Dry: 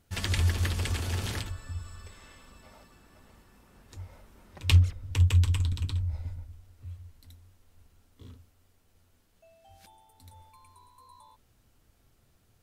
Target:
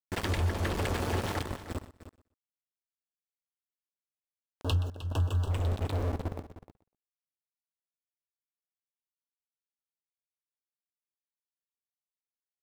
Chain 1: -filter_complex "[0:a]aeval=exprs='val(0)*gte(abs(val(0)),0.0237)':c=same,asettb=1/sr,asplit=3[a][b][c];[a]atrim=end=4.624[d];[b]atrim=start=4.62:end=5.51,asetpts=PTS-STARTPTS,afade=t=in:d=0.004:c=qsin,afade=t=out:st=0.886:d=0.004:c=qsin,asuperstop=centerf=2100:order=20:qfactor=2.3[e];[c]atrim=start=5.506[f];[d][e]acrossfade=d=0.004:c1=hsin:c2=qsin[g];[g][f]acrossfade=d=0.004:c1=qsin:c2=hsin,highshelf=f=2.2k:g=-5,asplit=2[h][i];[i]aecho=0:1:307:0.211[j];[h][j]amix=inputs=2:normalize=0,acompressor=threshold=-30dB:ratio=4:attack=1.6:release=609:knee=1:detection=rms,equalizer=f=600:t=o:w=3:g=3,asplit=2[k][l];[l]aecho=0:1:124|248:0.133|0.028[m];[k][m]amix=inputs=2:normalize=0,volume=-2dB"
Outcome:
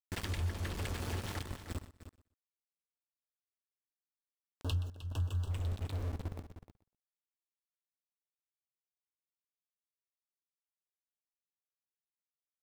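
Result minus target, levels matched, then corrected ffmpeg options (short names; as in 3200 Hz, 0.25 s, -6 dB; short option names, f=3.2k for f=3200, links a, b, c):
compressor: peak gain reduction +5 dB; 500 Hz band -5.0 dB
-filter_complex "[0:a]aeval=exprs='val(0)*gte(abs(val(0)),0.0237)':c=same,asettb=1/sr,asplit=3[a][b][c];[a]atrim=end=4.624[d];[b]atrim=start=4.62:end=5.51,asetpts=PTS-STARTPTS,afade=t=in:d=0.004:c=qsin,afade=t=out:st=0.886:d=0.004:c=qsin,asuperstop=centerf=2100:order=20:qfactor=2.3[e];[c]atrim=start=5.506[f];[d][e]acrossfade=d=0.004:c1=hsin:c2=qsin[g];[g][f]acrossfade=d=0.004:c1=qsin:c2=hsin,highshelf=f=2.2k:g=-5,asplit=2[h][i];[i]aecho=0:1:307:0.211[j];[h][j]amix=inputs=2:normalize=0,acompressor=threshold=-23.5dB:ratio=4:attack=1.6:release=609:knee=1:detection=rms,equalizer=f=600:t=o:w=3:g=11,asplit=2[k][l];[l]aecho=0:1:124|248:0.133|0.028[m];[k][m]amix=inputs=2:normalize=0,volume=-2dB"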